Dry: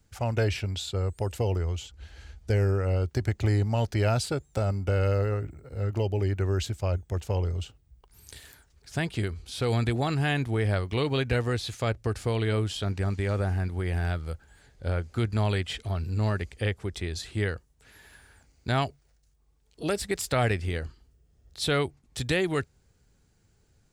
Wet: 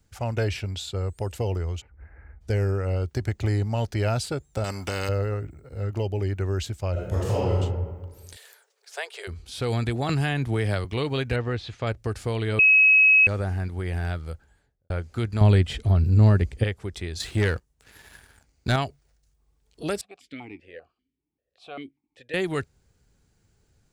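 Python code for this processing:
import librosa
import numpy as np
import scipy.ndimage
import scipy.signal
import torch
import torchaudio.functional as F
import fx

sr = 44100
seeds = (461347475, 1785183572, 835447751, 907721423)

y = fx.ellip_lowpass(x, sr, hz=2100.0, order=4, stop_db=40, at=(1.8, 2.4), fade=0.02)
y = fx.spectral_comp(y, sr, ratio=2.0, at=(4.64, 5.09))
y = fx.reverb_throw(y, sr, start_s=6.92, length_s=0.64, rt60_s=1.4, drr_db=-7.5)
y = fx.steep_highpass(y, sr, hz=400.0, slope=96, at=(8.35, 9.27), fade=0.02)
y = fx.band_squash(y, sr, depth_pct=100, at=(10.09, 10.85))
y = fx.lowpass(y, sr, hz=3400.0, slope=12, at=(11.36, 11.87))
y = fx.studio_fade_out(y, sr, start_s=14.24, length_s=0.66)
y = fx.low_shelf(y, sr, hz=480.0, db=11.5, at=(15.41, 16.64))
y = fx.leveller(y, sr, passes=2, at=(17.2, 18.76))
y = fx.vowel_held(y, sr, hz=5.1, at=(20.01, 22.34))
y = fx.edit(y, sr, fx.bleep(start_s=12.59, length_s=0.68, hz=2560.0, db=-12.5), tone=tone)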